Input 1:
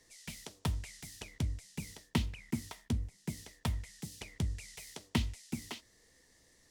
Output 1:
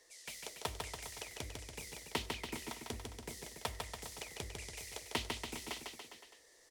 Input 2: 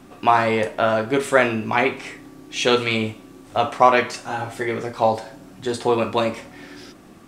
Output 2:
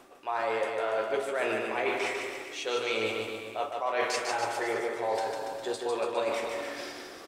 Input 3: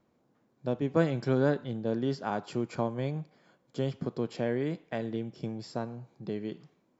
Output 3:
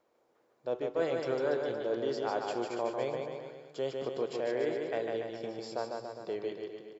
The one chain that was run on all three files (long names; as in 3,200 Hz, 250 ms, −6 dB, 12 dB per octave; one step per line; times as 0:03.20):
low shelf with overshoot 300 Hz −13.5 dB, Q 1.5
hum removal 94.37 Hz, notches 4
reversed playback
downward compressor 12 to 1, threshold −28 dBFS
reversed playback
bouncing-ball delay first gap 150 ms, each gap 0.9×, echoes 5